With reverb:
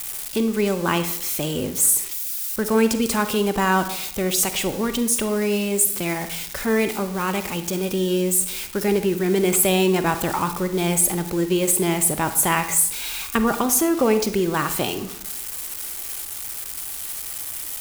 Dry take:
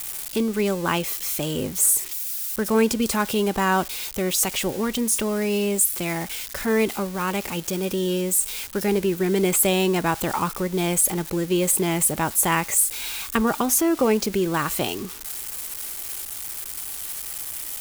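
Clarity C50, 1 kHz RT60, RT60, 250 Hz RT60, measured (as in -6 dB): 11.0 dB, 0.70 s, 0.75 s, 0.85 s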